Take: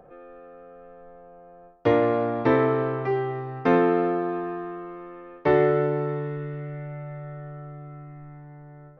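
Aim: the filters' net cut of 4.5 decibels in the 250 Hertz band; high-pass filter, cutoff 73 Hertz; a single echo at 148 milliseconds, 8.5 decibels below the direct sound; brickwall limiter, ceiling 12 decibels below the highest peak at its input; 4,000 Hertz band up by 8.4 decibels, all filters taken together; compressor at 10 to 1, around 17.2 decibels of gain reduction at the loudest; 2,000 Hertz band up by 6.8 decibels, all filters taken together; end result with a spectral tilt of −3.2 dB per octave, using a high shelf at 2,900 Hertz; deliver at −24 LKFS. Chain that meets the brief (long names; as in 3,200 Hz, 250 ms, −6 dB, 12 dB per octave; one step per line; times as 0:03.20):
high-pass filter 73 Hz
parametric band 250 Hz −7 dB
parametric band 2,000 Hz +5.5 dB
high-shelf EQ 2,900 Hz +5 dB
parametric band 4,000 Hz +5 dB
downward compressor 10 to 1, threshold −34 dBFS
brickwall limiter −31.5 dBFS
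single-tap delay 148 ms −8.5 dB
level +16.5 dB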